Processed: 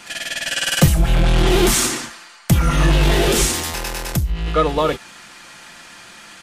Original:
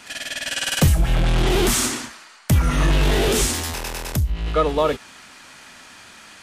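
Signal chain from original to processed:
comb filter 5.8 ms, depth 43%
level +2.5 dB

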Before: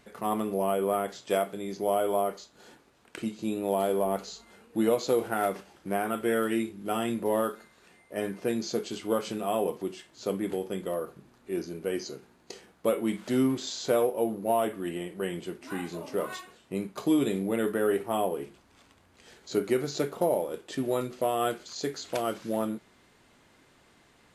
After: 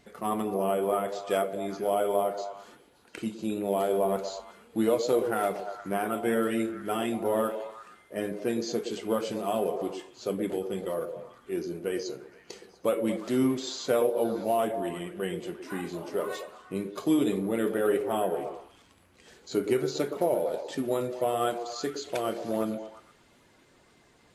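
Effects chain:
spectral magnitudes quantised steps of 15 dB
echo through a band-pass that steps 116 ms, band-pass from 420 Hz, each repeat 0.7 octaves, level −6 dB

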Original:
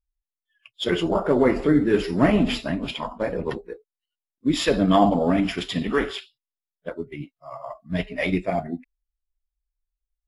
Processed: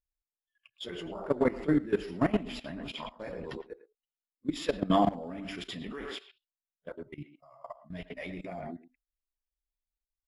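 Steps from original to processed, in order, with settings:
0:02.94–0:03.68: parametric band 4,800 Hz +7 dB 2.1 octaves
far-end echo of a speakerphone 110 ms, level −9 dB
output level in coarse steps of 17 dB
level −5.5 dB

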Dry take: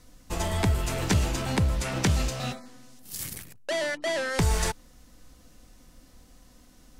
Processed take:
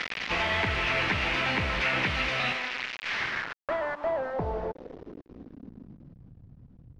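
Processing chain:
linear delta modulator 32 kbit/s, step −33.5 dBFS
spectral tilt +3 dB per octave
downward compressor 8 to 1, threshold −33 dBFS, peak gain reduction 10 dB
log-companded quantiser 2 bits
low-pass filter sweep 2,300 Hz → 120 Hz, 0:02.99–0:06.44

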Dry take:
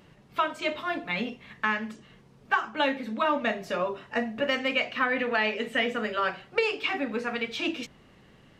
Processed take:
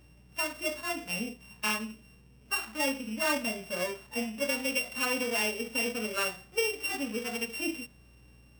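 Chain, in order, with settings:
samples sorted by size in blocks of 16 samples
mains hum 60 Hz, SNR 25 dB
harmonic and percussive parts rebalanced percussive −17 dB
level −2.5 dB

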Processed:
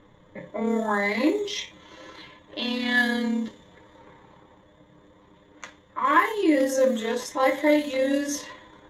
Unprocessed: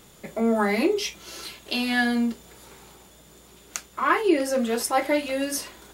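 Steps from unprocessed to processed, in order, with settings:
EQ curve with evenly spaced ripples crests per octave 1.1, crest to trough 10 dB
low-pass that shuts in the quiet parts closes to 1,600 Hz, open at −16 dBFS
time stretch by overlap-add 1.5×, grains 59 ms

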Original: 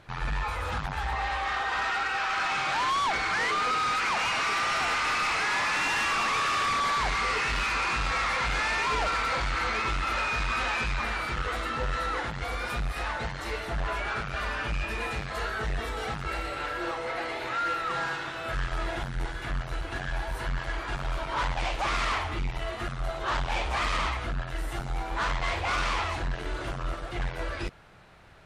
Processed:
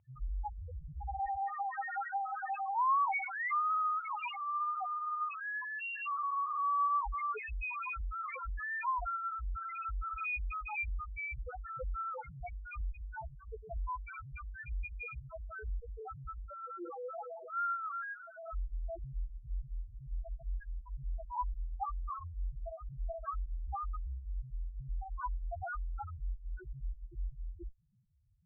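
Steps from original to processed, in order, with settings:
harmonic generator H 3 −17 dB, 4 −9 dB, 6 −17 dB, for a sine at −24 dBFS
spectral peaks only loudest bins 1
Chebyshev low-pass with heavy ripple 3,200 Hz, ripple 6 dB
level +5.5 dB

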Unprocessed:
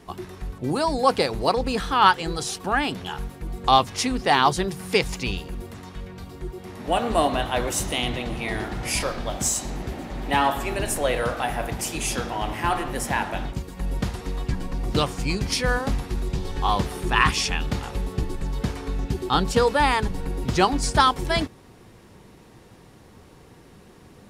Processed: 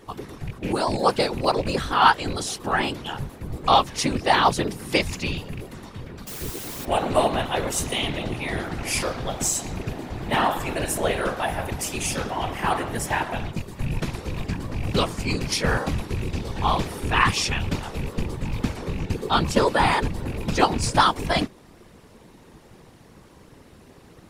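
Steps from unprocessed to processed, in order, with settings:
loose part that buzzes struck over −25 dBFS, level −26 dBFS
0:06.27–0:06.85: bit-depth reduction 6 bits, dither triangular
random phases in short frames

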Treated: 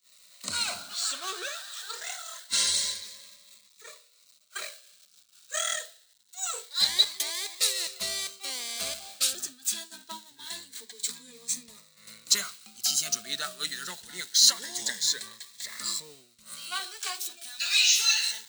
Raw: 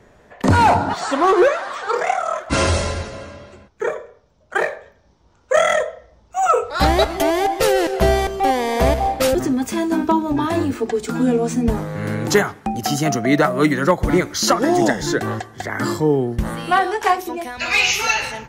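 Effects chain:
converter with a step at zero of −29.5 dBFS
first difference
downward expander −31 dBFS
thirty-one-band graphic EQ 200 Hz +6 dB, 315 Hz −11 dB, 500 Hz −4 dB, 800 Hz −10 dB, 4,000 Hz +11 dB, 8,000 Hz +5 dB, 12,500 Hz −12 dB
phaser whose notches keep moving one way rising 0.25 Hz

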